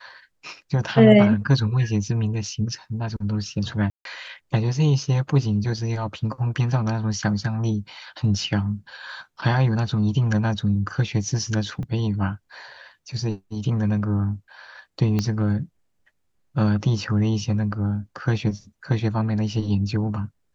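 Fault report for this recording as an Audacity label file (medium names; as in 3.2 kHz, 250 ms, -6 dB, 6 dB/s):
3.900000	4.050000	dropout 152 ms
11.830000	11.830000	dropout 2.3 ms
15.190000	15.190000	pop -11 dBFS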